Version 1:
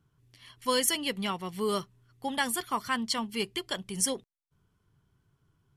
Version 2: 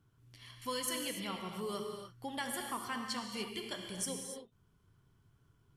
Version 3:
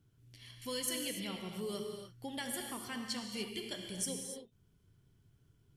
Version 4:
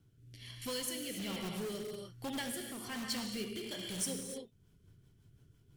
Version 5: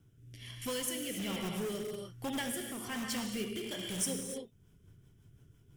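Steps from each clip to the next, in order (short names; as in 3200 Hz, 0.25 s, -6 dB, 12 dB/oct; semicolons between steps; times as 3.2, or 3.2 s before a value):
compressor 1.5:1, threshold -53 dBFS, peak gain reduction 11 dB; non-linear reverb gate 0.32 s flat, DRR 2.5 dB; gain -1 dB
bell 1100 Hz -10.5 dB 1 oct; gain +1 dB
in parallel at -5 dB: wrapped overs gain 38 dB; on the sum: rotary speaker horn 1.2 Hz, later 6 Hz, at 4.02; gain +1.5 dB
bell 4300 Hz -12 dB 0.2 oct; gain +3 dB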